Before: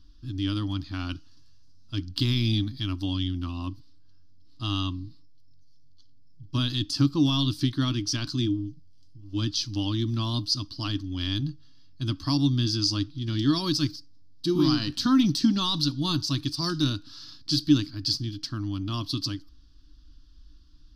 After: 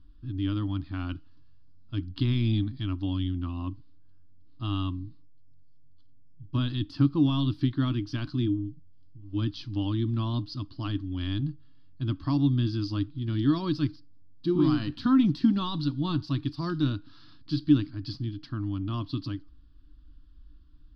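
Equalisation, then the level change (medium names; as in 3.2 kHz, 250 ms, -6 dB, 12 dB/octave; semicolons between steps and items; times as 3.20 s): distance through air 410 m; 0.0 dB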